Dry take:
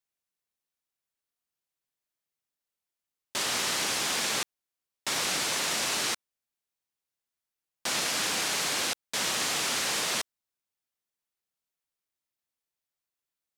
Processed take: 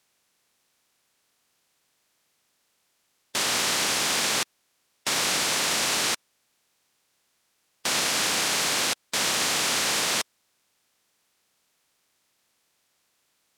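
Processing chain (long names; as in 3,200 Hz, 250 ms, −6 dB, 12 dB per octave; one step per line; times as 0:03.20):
compressor on every frequency bin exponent 0.6
expander for the loud parts 1.5 to 1, over −45 dBFS
level +2 dB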